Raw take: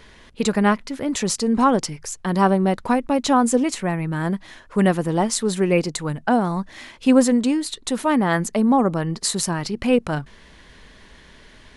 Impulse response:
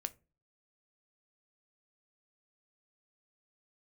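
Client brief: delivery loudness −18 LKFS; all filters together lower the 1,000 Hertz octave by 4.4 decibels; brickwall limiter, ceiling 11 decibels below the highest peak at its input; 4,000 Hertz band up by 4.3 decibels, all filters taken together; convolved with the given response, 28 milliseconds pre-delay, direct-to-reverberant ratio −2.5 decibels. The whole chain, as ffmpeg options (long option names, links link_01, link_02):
-filter_complex "[0:a]equalizer=frequency=1000:width_type=o:gain=-6,equalizer=frequency=4000:width_type=o:gain=5.5,alimiter=limit=-13dB:level=0:latency=1,asplit=2[link_01][link_02];[1:a]atrim=start_sample=2205,adelay=28[link_03];[link_02][link_03]afir=irnorm=-1:irlink=0,volume=4dB[link_04];[link_01][link_04]amix=inputs=2:normalize=0,volume=1dB"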